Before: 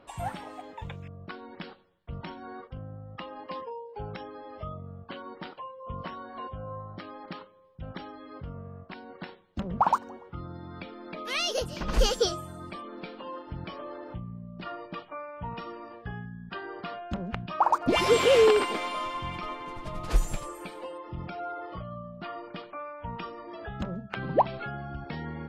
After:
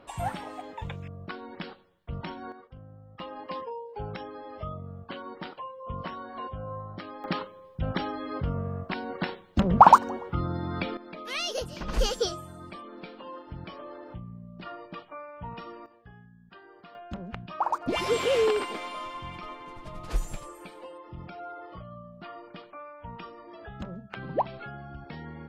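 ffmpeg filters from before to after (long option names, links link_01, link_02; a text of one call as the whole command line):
ffmpeg -i in.wav -af "asetnsamples=nb_out_samples=441:pad=0,asendcmd='2.52 volume volume -7dB;3.2 volume volume 1.5dB;7.24 volume volume 10dB;10.97 volume volume -2.5dB;15.86 volume volume -13dB;16.95 volume volume -4.5dB',volume=2.5dB" out.wav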